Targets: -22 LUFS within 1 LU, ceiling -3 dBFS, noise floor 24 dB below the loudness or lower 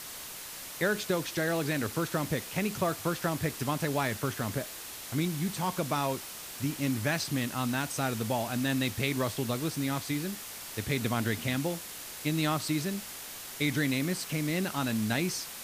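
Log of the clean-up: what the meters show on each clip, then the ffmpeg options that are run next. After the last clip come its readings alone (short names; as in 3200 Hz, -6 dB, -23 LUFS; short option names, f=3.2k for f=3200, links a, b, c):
noise floor -43 dBFS; noise floor target -56 dBFS; loudness -31.5 LUFS; peak -15.0 dBFS; loudness target -22.0 LUFS
-> -af "afftdn=nr=13:nf=-43"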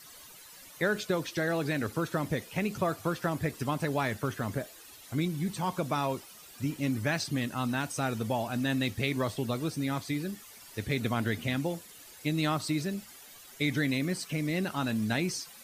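noise floor -51 dBFS; noise floor target -56 dBFS
-> -af "afftdn=nr=6:nf=-51"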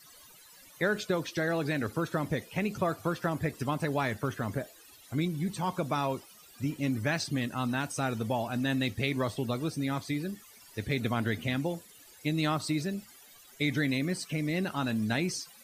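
noise floor -55 dBFS; noise floor target -56 dBFS
-> -af "afftdn=nr=6:nf=-55"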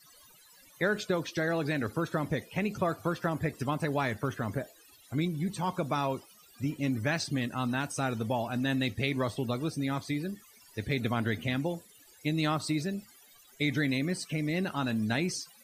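noise floor -58 dBFS; loudness -32.0 LUFS; peak -15.5 dBFS; loudness target -22.0 LUFS
-> -af "volume=10dB"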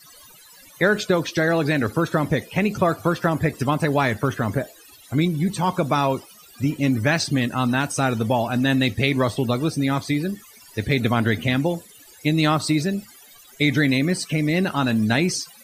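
loudness -22.0 LUFS; peak -5.5 dBFS; noise floor -48 dBFS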